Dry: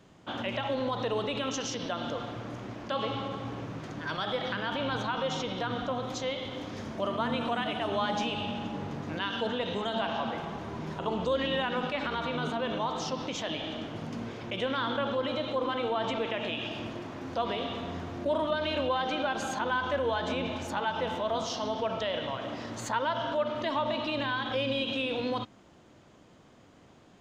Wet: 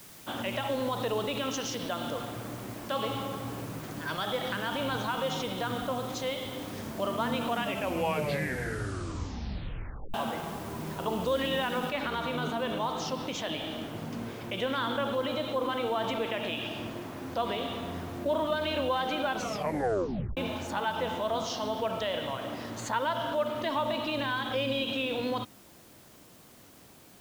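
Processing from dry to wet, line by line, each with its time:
0:07.51: tape stop 2.63 s
0:11.90: noise floor change −51 dB −58 dB
0:19.34: tape stop 1.03 s

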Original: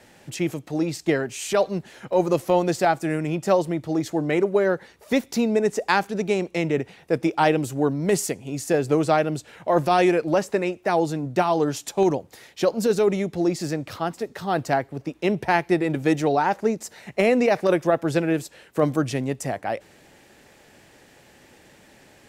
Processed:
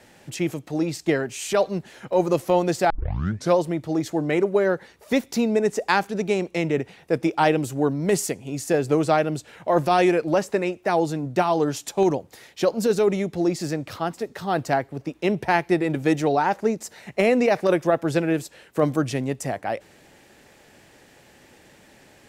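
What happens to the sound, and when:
0:02.90: tape start 0.67 s

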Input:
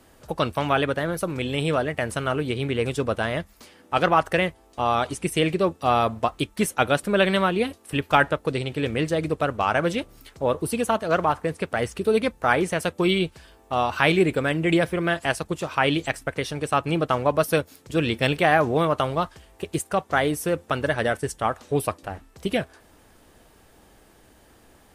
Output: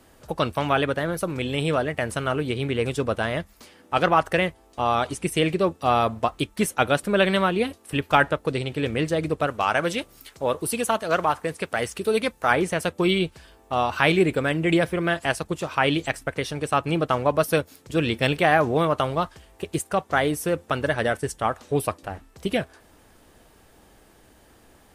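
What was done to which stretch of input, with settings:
0:09.47–0:12.51: spectral tilt +1.5 dB per octave

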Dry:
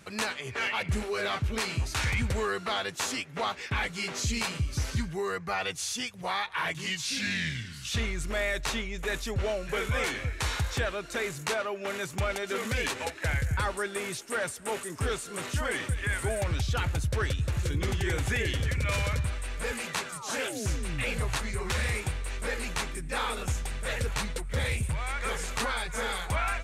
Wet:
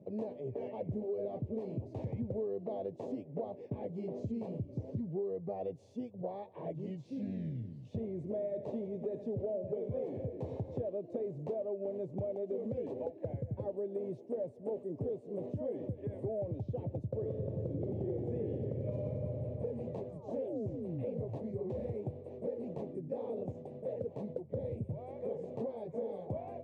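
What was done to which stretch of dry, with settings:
0:08.08–0:10.81: echo with a time of its own for lows and highs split 490 Hz, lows 271 ms, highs 82 ms, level −10.5 dB
0:17.07–0:19.41: thrown reverb, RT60 2.5 s, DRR 1 dB
0:23.47–0:24.30: parametric band 82 Hz −7.5 dB 1.4 octaves
whole clip: elliptic band-pass filter 100–590 Hz, stop band 40 dB; low-shelf EQ 210 Hz −8.5 dB; downward compressor 4 to 1, threshold −40 dBFS; level +5.5 dB

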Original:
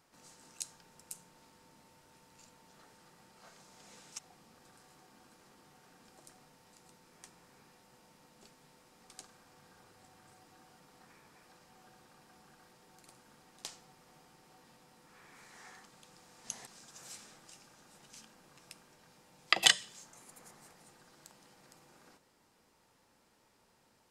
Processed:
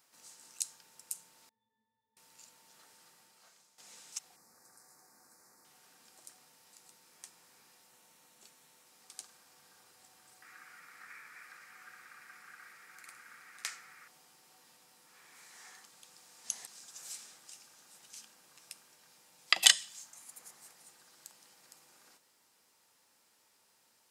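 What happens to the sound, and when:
0:01.49–0:02.17: resonances in every octave A, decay 0.33 s
0:03.07–0:03.78: fade out, to −13.5 dB
0:04.36–0:05.65: Butterworth band-reject 3,100 Hz, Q 1.1
0:07.89–0:08.87: notch filter 4,900 Hz, Q 10
0:10.42–0:14.08: flat-topped bell 1,700 Hz +16 dB 1.2 octaves
0:19.54–0:20.35: parametric band 430 Hz −10 dB 0.37 octaves
whole clip: spectral tilt +3 dB per octave; level −3.5 dB

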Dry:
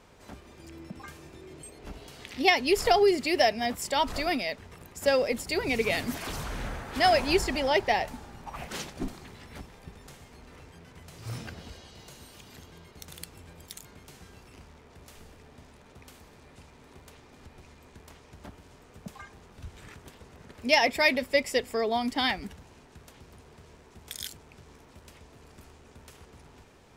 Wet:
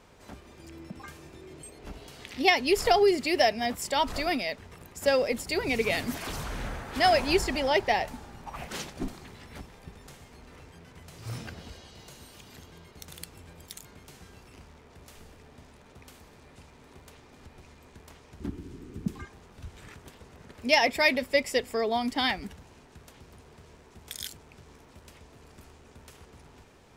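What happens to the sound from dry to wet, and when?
0:18.40–0:19.25: low shelf with overshoot 440 Hz +9.5 dB, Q 3

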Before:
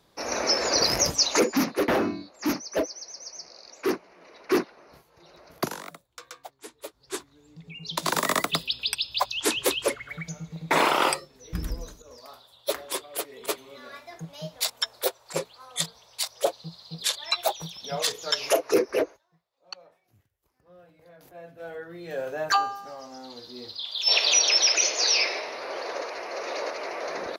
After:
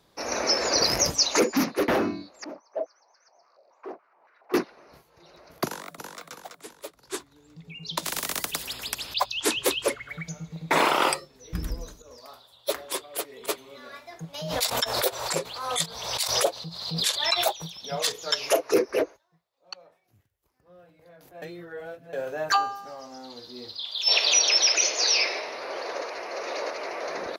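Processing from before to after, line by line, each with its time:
0:02.44–0:04.54: band-pass on a step sequencer 7.1 Hz 590–1,500 Hz
0:05.65–0:06.21: delay throw 330 ms, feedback 45%, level −4.5 dB
0:08.04–0:09.14: every bin compressed towards the loudest bin 4 to 1
0:14.34–0:17.53: background raised ahead of every attack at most 51 dB per second
0:21.42–0:22.13: reverse

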